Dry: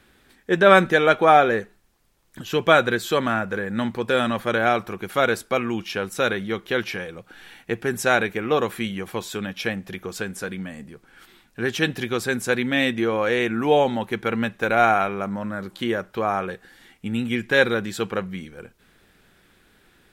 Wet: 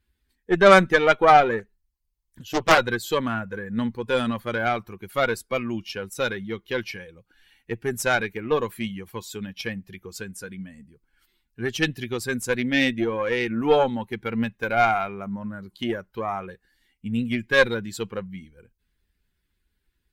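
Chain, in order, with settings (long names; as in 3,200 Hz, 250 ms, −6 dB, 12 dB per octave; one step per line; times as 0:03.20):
spectral dynamics exaggerated over time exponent 1.5
harmonic generator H 6 −21 dB, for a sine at −2.5 dBFS
0:01.59–0:02.78: highs frequency-modulated by the lows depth 0.85 ms
level +1.5 dB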